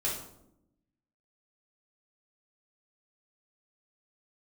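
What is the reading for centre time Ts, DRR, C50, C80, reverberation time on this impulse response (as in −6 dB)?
40 ms, −7.0 dB, 4.0 dB, 8.0 dB, 0.80 s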